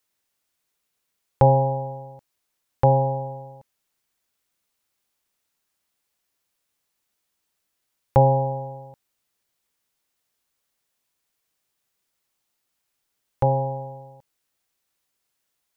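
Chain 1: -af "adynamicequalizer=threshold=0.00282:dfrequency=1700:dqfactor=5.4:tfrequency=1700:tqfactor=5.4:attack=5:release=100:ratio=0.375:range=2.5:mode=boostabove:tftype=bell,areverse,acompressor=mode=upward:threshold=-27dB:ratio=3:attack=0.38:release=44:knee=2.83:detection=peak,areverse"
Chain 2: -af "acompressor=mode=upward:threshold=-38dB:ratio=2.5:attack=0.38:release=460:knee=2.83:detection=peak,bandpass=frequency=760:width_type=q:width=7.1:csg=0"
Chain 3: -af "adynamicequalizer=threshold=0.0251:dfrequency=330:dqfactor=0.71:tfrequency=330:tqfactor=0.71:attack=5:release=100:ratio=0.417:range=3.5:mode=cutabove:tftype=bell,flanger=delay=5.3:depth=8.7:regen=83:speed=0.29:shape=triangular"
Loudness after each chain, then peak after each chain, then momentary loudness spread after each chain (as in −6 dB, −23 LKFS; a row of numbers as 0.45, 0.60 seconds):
−23.0, −30.0, −27.0 LKFS; −3.5, −14.0, −8.0 dBFS; 21, 18, 20 LU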